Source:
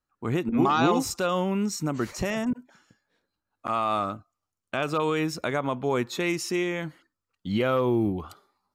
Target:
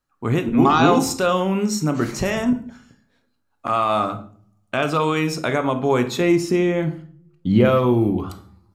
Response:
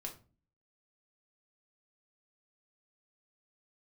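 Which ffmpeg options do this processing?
-filter_complex "[0:a]asettb=1/sr,asplit=3[link_01][link_02][link_03];[link_01]atrim=end=6.204[link_04];[link_02]atrim=start=6.2:end=7.65,asetpts=PTS-STARTPTS,afade=type=in:duration=0.004:curve=qsin,afade=type=out:start_time=1.446:duration=0.004:curve=qsin,tiltshelf=frequency=860:gain=6.5[link_05];[link_03]atrim=start=7.646[link_06];[link_04][link_05]acrossfade=duration=0.004:curve1=hsin:curve2=qsin[link_07];[link_07][link_06]acrossfade=duration=0.004:curve1=qsin:curve2=hsin,asplit=2[link_08][link_09];[1:a]atrim=start_sample=2205,asetrate=27783,aresample=44100[link_10];[link_09][link_10]afir=irnorm=-1:irlink=0,volume=0dB[link_11];[link_08][link_11]amix=inputs=2:normalize=0,volume=1dB"

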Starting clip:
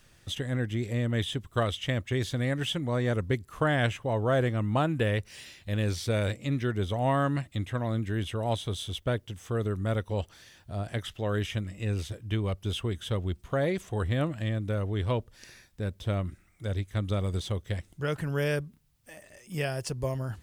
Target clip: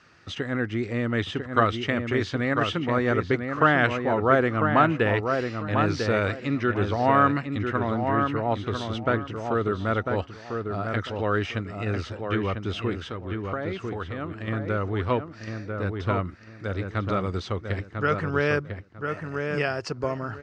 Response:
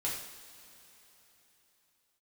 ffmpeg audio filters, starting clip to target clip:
-filter_complex "[0:a]asettb=1/sr,asplit=3[link_01][link_02][link_03];[link_01]atrim=end=7.944[link_04];[link_02]atrim=start=7.94:end=8.67,asetpts=PTS-STARTPTS,afade=type=in:duration=0.004:curve=qsin,afade=type=out:start_time=0.726:duration=0.004:curve=qsin,highshelf=frequency=2700:gain=-10[link_05];[link_03]atrim=start=8.666[link_06];[link_04][link_05]acrossfade=duration=0.004:curve1=hsin:curve2=qsin[link_07];[link_07][link_06]acrossfade=duration=0.004:curve1=qsin:curve2=hsin,asettb=1/sr,asplit=3[link_08][link_09][link_10];[link_08]atrim=end=12.964[link_11];[link_09]atrim=start=12.96:end=14.48,asetpts=PTS-STARTPTS,afade=type=in:duration=0.004:curve=qsin,afade=type=out:start_time=1.516:duration=0.004:curve=qsin,acompressor=threshold=-34dB:ratio=4[link_12];[link_10]atrim=start=14.476[link_13];[link_11][link_12]acrossfade=duration=0.004:curve1=hsin:curve2=qsin[link_14];[link_14][link_13]acrossfade=duration=0.004:curve1=qsin:curve2=hsin,highpass=120,equalizer=frequency=130:width_type=q:width=4:gain=-8,equalizer=frequency=200:width_type=q:width=4:gain=-4,equalizer=frequency=570:width_type=q:width=4:gain=-4,equalizer=frequency=1300:width_type=q:width=4:gain=8,equalizer=frequency=3400:width_type=q:width=4:gain=-10,lowpass=frequency=5000:width=0.5412,lowpass=frequency=5000:width=1.3066,asplit=2[link_15][link_16];[link_16]adelay=997,lowpass=frequency=2300:poles=1,volume=-5dB,asplit=2[link_17][link_18];[link_18]adelay=997,lowpass=frequency=2300:poles=1,volume=0.24,asplit=2[link_19][link_20];[link_20]adelay=997,lowpass=frequency=2300:poles=1,volume=0.24[link_21];[link_15][link_17][link_19][link_21]amix=inputs=4:normalize=0,volume=6.5dB"

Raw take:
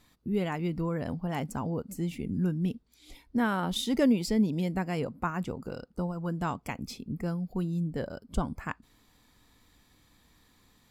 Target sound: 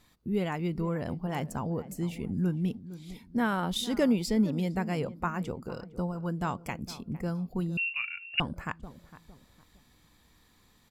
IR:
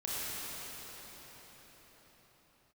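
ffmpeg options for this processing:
-filter_complex "[0:a]equalizer=frequency=270:width_type=o:width=0.22:gain=-4,asplit=2[link_01][link_02];[link_02]adelay=458,lowpass=frequency=1200:poles=1,volume=-15dB,asplit=2[link_03][link_04];[link_04]adelay=458,lowpass=frequency=1200:poles=1,volume=0.36,asplit=2[link_05][link_06];[link_06]adelay=458,lowpass=frequency=1200:poles=1,volume=0.36[link_07];[link_01][link_03][link_05][link_07]amix=inputs=4:normalize=0,asettb=1/sr,asplit=3[link_08][link_09][link_10];[link_08]atrim=end=7.774[link_11];[link_09]atrim=start=7.77:end=8.4,asetpts=PTS-STARTPTS,afade=type=in:duration=0.004:curve=qsin,afade=type=out:start_time=0.626:duration=0.004:curve=qsin,lowpass=frequency=2500:width_type=q:width=0.5098,lowpass=frequency=2500:width_type=q:width=0.6013,lowpass=frequency=2500:width_type=q:width=0.9,lowpass=frequency=2500:width_type=q:width=2.563,afreqshift=-2900[link_12];[link_10]atrim=start=8.396[link_13];[link_11][link_12]acrossfade=duration=0.004:curve1=hsin:curve2=qsin[link_14];[link_14][link_13]acrossfade=duration=0.004:curve1=qsin:curve2=hsin"

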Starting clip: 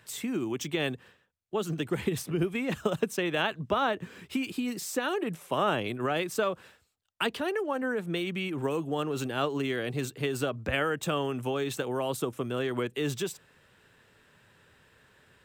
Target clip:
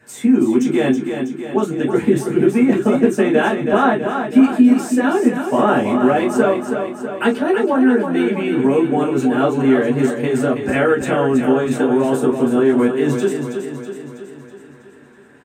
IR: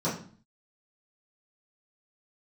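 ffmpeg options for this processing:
-filter_complex "[0:a]aecho=1:1:324|648|972|1296|1620|1944|2268:0.447|0.255|0.145|0.0827|0.0472|0.0269|0.0153[link_01];[1:a]atrim=start_sample=2205,atrim=end_sample=3969,asetrate=66150,aresample=44100[link_02];[link_01][link_02]afir=irnorm=-1:irlink=0,volume=1.5dB"

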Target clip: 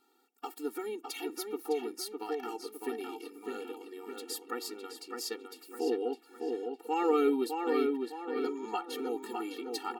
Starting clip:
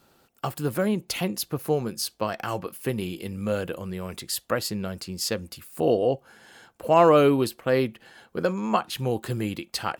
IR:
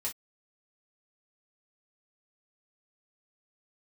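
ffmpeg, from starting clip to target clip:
-filter_complex "[0:a]asplit=2[link_01][link_02];[link_02]adelay=608,lowpass=frequency=3200:poles=1,volume=-4dB,asplit=2[link_03][link_04];[link_04]adelay=608,lowpass=frequency=3200:poles=1,volume=0.46,asplit=2[link_05][link_06];[link_06]adelay=608,lowpass=frequency=3200:poles=1,volume=0.46,asplit=2[link_07][link_08];[link_08]adelay=608,lowpass=frequency=3200:poles=1,volume=0.46,asplit=2[link_09][link_10];[link_10]adelay=608,lowpass=frequency=3200:poles=1,volume=0.46,asplit=2[link_11][link_12];[link_12]adelay=608,lowpass=frequency=3200:poles=1,volume=0.46[link_13];[link_01][link_03][link_05][link_07][link_09][link_11][link_13]amix=inputs=7:normalize=0,afftfilt=real='re*eq(mod(floor(b*sr/1024/240),2),1)':imag='im*eq(mod(floor(b*sr/1024/240),2),1)':win_size=1024:overlap=0.75,volume=-7dB"

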